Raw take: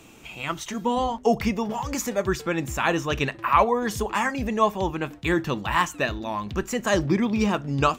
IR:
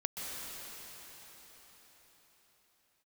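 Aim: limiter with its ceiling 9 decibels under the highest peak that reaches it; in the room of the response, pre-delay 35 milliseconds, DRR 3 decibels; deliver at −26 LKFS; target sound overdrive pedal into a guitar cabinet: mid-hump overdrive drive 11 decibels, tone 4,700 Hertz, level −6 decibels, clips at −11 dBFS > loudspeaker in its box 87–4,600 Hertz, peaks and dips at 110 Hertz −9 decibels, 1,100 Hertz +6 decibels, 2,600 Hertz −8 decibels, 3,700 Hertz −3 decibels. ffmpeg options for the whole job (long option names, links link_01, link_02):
-filter_complex "[0:a]alimiter=limit=-15dB:level=0:latency=1,asplit=2[link_01][link_02];[1:a]atrim=start_sample=2205,adelay=35[link_03];[link_02][link_03]afir=irnorm=-1:irlink=0,volume=-6.5dB[link_04];[link_01][link_04]amix=inputs=2:normalize=0,asplit=2[link_05][link_06];[link_06]highpass=frequency=720:poles=1,volume=11dB,asoftclip=type=tanh:threshold=-11dB[link_07];[link_05][link_07]amix=inputs=2:normalize=0,lowpass=frequency=4700:poles=1,volume=-6dB,highpass=87,equalizer=frequency=110:width_type=q:width=4:gain=-9,equalizer=frequency=1100:width_type=q:width=4:gain=6,equalizer=frequency=2600:width_type=q:width=4:gain=-8,equalizer=frequency=3700:width_type=q:width=4:gain=-3,lowpass=frequency=4600:width=0.5412,lowpass=frequency=4600:width=1.3066,volume=-3.5dB"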